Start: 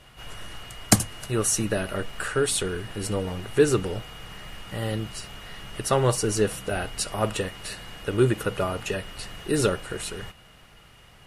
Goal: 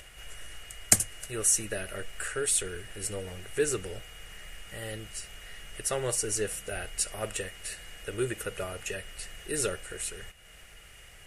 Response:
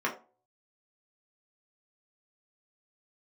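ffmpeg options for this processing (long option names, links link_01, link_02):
-af "acompressor=mode=upward:threshold=-37dB:ratio=2.5,equalizer=frequency=125:width_type=o:width=1:gain=-9,equalizer=frequency=250:width_type=o:width=1:gain=-11,equalizer=frequency=1000:width_type=o:width=1:gain=-12,equalizer=frequency=2000:width_type=o:width=1:gain=4,equalizer=frequency=4000:width_type=o:width=1:gain=-7,equalizer=frequency=8000:width_type=o:width=1:gain=6,volume=-3dB"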